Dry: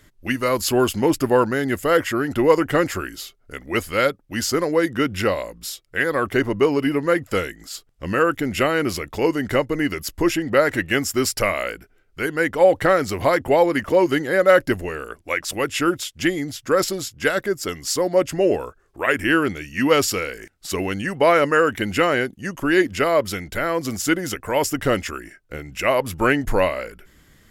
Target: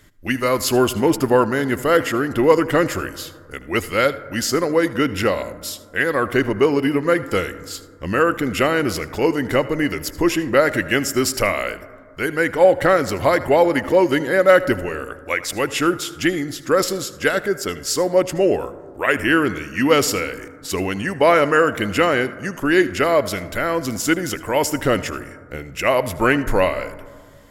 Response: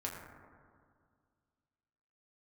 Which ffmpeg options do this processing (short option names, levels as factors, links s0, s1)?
-filter_complex "[0:a]asplit=2[s0][s1];[1:a]atrim=start_sample=2205,adelay=77[s2];[s1][s2]afir=irnorm=-1:irlink=0,volume=0.168[s3];[s0][s3]amix=inputs=2:normalize=0,volume=1.19"